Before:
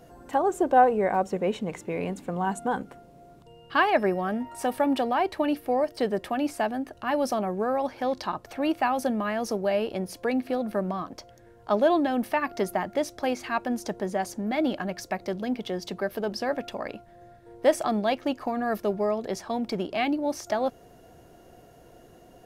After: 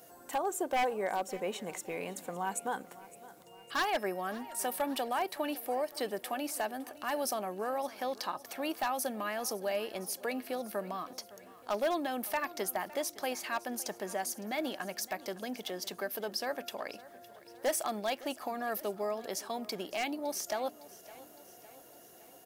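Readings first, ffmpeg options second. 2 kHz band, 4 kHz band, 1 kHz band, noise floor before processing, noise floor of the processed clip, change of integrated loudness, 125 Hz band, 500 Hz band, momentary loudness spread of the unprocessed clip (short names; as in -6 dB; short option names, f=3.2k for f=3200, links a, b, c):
-6.0 dB, -2.0 dB, -8.5 dB, -53 dBFS, -56 dBFS, -8.5 dB, under -10 dB, -9.0 dB, 9 LU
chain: -filter_complex "[0:a]highpass=f=510:p=1,aemphasis=mode=production:type=50fm,asplit=2[a][b];[b]acompressor=threshold=-36dB:ratio=6,volume=-2dB[c];[a][c]amix=inputs=2:normalize=0,aeval=exprs='0.158*(abs(mod(val(0)/0.158+3,4)-2)-1)':c=same,aecho=1:1:560|1120|1680|2240|2800:0.112|0.0617|0.0339|0.0187|0.0103,volume=-7.5dB"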